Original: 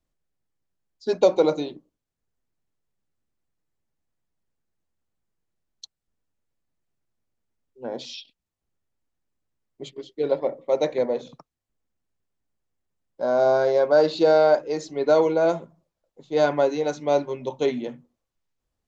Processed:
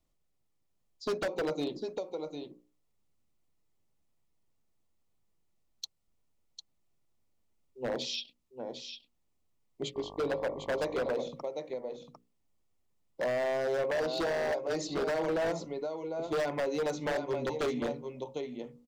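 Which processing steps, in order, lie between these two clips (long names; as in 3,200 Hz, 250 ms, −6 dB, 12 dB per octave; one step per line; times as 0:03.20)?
parametric band 1,600 Hz −10.5 dB 0.25 octaves
mains-hum notches 60/120/180/240/300/360/420/480/540 Hz
downward compressor 8 to 1, threshold −28 dBFS, peak gain reduction 16 dB
single-tap delay 751 ms −8 dB
wave folding −27.5 dBFS
0:09.94–0:11.11: hum with harmonics 50 Hz, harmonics 23, −50 dBFS 0 dB per octave
level +2 dB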